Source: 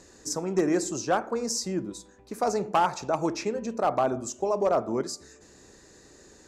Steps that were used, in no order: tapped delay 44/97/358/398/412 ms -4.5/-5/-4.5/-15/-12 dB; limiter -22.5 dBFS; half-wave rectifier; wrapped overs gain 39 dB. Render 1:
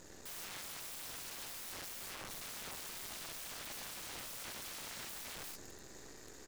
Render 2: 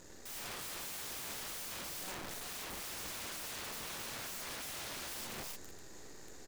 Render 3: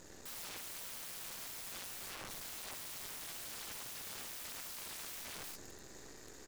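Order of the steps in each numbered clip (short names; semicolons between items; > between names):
tapped delay > limiter > half-wave rectifier > wrapped overs; limiter > half-wave rectifier > tapped delay > wrapped overs; tapped delay > half-wave rectifier > wrapped overs > limiter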